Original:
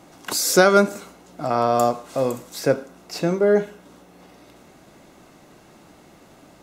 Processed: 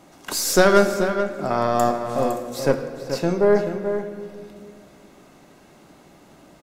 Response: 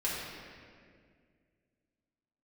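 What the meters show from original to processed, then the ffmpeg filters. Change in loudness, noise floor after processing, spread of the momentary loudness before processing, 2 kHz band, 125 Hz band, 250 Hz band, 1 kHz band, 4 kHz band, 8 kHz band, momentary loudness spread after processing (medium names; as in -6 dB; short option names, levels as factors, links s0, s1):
-0.5 dB, -51 dBFS, 13 LU, -0.5 dB, +1.0 dB, +0.5 dB, 0.0 dB, -1.0 dB, -1.5 dB, 13 LU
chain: -filter_complex "[0:a]aeval=exprs='0.794*(cos(1*acos(clip(val(0)/0.794,-1,1)))-cos(1*PI/2))+0.0891*(cos(4*acos(clip(val(0)/0.794,-1,1)))-cos(4*PI/2))':c=same,asplit=2[s0][s1];[s1]adelay=431.5,volume=0.398,highshelf=f=4000:g=-9.71[s2];[s0][s2]amix=inputs=2:normalize=0,asplit=2[s3][s4];[1:a]atrim=start_sample=2205[s5];[s4][s5]afir=irnorm=-1:irlink=0,volume=0.266[s6];[s3][s6]amix=inputs=2:normalize=0,volume=0.668"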